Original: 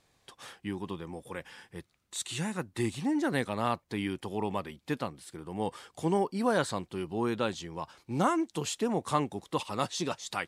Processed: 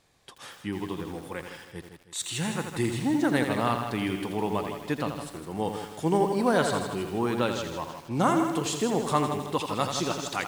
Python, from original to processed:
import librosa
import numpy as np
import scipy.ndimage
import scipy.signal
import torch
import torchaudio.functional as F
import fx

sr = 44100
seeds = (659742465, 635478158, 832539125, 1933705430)

y = fx.echo_feedback(x, sr, ms=159, feedback_pct=42, wet_db=-9.5)
y = fx.echo_crushed(y, sr, ms=83, feedback_pct=55, bits=8, wet_db=-7.0)
y = y * 10.0 ** (3.0 / 20.0)